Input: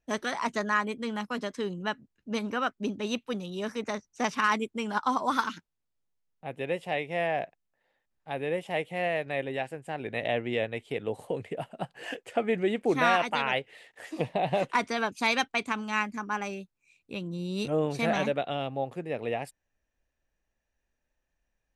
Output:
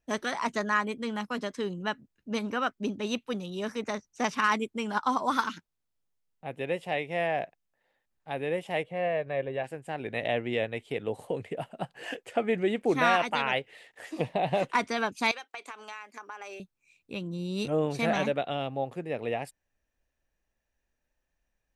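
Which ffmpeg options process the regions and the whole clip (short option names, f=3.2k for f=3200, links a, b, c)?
-filter_complex "[0:a]asettb=1/sr,asplit=3[a][b][c];[a]atrim=end=8.834[d];[b]atrim=start=8.83:end=9.64,asetpts=PTS-STARTPTS,afade=t=in:d=0.004:c=qsin,afade=t=out:st=0.806:d=0.004:c=qsin,lowpass=f=1.4k:p=1,aecho=1:1:1.8:0.42,atrim=end_sample=35721[e];[c]atrim=start=9.636[f];[d][e]acrossfade=d=0.004:c1=hsin:c2=qsin[g];[g][f]acrossfade=d=0.004:c1=qsin:c2=hsin,asettb=1/sr,asplit=3[h][i][j];[h]atrim=end=15.314[k];[i]atrim=start=15.31:end=16.6,asetpts=PTS-STARTPTS,afade=t=in:d=0.004:c=qsin,afade=t=out:st=1.286:d=0.004:c=qsin,highpass=f=400:w=0.5412,highpass=f=400:w=1.3066,acompressor=threshold=-37dB:ratio=8:attack=3.2:release=140:knee=1:detection=peak[l];[j]atrim=start=16.596[m];[k][l]acrossfade=d=0.004:c1=hsin:c2=qsin[n];[n][m]acrossfade=d=0.004:c1=qsin:c2=hsin"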